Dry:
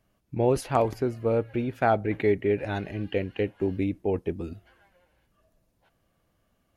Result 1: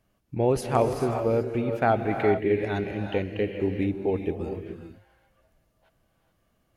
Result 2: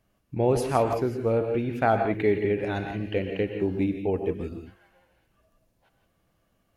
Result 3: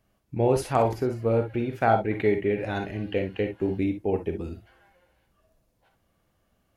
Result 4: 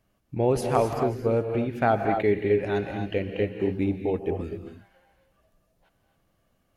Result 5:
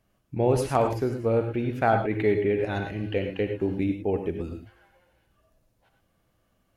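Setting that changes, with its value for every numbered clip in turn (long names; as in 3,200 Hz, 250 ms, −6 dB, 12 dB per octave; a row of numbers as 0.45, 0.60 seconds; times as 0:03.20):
reverb whose tail is shaped and stops, gate: 460, 190, 80, 290, 130 milliseconds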